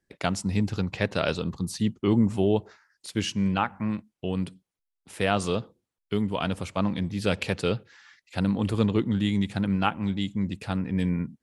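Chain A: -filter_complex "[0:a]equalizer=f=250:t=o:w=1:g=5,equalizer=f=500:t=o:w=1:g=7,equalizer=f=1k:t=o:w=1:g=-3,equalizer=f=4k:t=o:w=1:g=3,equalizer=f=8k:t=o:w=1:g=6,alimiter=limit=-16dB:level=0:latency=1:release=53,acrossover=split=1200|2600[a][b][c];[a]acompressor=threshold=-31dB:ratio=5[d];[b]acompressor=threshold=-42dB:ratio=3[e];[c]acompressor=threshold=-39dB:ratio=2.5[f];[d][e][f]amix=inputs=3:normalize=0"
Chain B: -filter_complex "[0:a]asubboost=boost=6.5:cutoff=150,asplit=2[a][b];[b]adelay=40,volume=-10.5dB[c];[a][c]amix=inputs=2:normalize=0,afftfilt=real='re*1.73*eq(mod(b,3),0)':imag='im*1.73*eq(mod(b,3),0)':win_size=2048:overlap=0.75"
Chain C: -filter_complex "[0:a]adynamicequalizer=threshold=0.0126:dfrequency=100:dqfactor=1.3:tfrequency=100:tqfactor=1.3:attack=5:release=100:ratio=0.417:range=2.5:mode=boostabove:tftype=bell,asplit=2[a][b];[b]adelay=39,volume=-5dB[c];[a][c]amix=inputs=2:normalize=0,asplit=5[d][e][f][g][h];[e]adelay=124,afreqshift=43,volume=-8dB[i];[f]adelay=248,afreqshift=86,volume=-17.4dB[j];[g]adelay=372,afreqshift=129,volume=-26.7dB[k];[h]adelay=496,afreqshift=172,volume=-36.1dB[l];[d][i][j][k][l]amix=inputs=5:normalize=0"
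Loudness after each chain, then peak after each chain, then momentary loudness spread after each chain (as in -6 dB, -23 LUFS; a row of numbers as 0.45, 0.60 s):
-35.0, -24.0, -24.0 LUFS; -17.5, -9.5, -5.5 dBFS; 6, 12, 10 LU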